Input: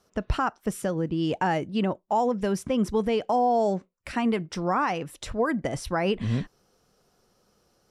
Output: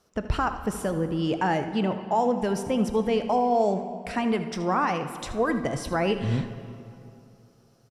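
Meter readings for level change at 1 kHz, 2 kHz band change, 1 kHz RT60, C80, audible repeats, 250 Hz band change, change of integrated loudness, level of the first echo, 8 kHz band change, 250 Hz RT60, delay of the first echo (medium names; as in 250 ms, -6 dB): +0.5 dB, +0.5 dB, 2.6 s, 11.0 dB, 1, +0.5 dB, +0.5 dB, -13.5 dB, +0.5 dB, 2.9 s, 78 ms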